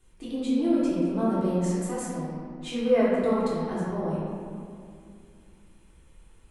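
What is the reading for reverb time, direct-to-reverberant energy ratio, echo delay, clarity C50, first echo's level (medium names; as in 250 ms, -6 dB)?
2.5 s, -10.5 dB, no echo, -3.0 dB, no echo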